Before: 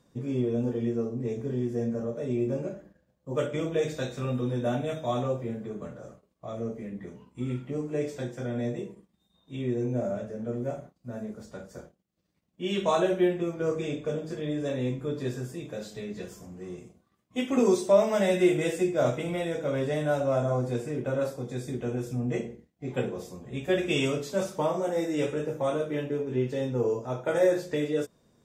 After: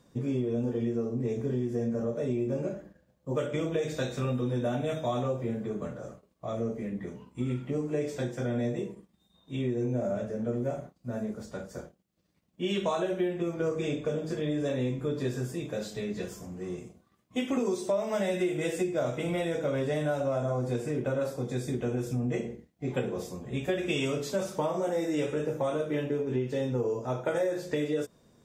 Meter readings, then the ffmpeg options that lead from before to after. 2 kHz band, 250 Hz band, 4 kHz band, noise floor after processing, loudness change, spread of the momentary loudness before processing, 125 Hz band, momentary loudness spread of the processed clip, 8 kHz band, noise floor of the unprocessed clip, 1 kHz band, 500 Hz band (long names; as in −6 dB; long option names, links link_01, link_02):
−2.0 dB, −1.5 dB, −1.5 dB, −70 dBFS, −2.0 dB, 15 LU, −0.5 dB, 8 LU, −1.5 dB, −73 dBFS, −3.0 dB, −2.5 dB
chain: -af "acompressor=threshold=-29dB:ratio=6,volume=3dB"